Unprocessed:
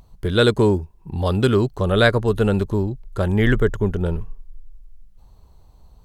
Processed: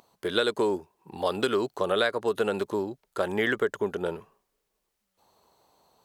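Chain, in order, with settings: high-pass 410 Hz 12 dB/octave; compression 6:1, threshold -21 dBFS, peak gain reduction 10.5 dB

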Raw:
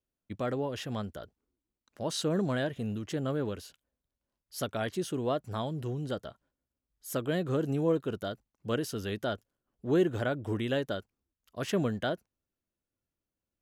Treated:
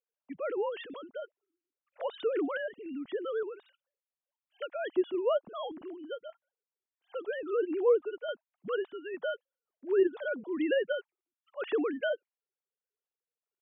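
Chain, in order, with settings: formants replaced by sine waves; random-step tremolo; trim +2 dB

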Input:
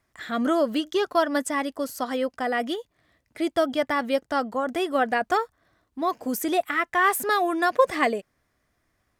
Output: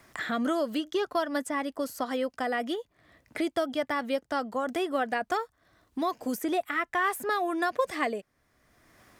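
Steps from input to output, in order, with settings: three bands compressed up and down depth 70%; trim -5.5 dB

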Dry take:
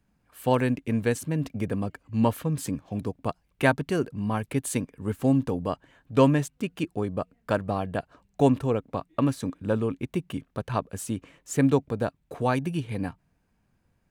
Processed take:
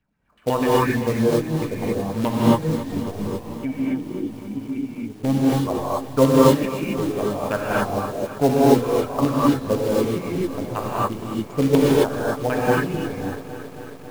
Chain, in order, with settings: in parallel at -3 dB: hysteresis with a dead band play -20.5 dBFS; on the sum: reverb removal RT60 1.8 s; LFO low-pass saw down 8 Hz 370–3400 Hz; short-mantissa float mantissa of 2-bit; 3.26–5.17 s: cascade formant filter i; gated-style reverb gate 300 ms rising, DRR -7 dB; bit-crushed delay 273 ms, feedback 80%, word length 6-bit, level -14 dB; trim -5.5 dB

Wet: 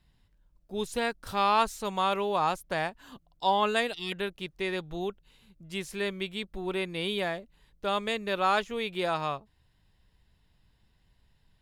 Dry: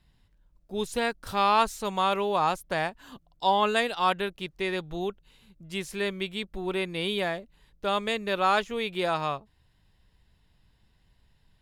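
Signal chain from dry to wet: time-frequency box 3.93–4.13 s, 480–1800 Hz -29 dB; trim -2 dB

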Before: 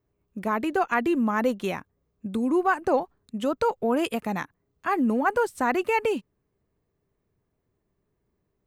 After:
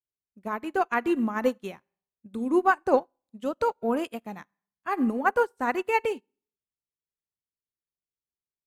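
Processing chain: Schroeder reverb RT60 0.66 s, combs from 31 ms, DRR 15 dB; upward expansion 2.5:1, over -42 dBFS; trim +3 dB

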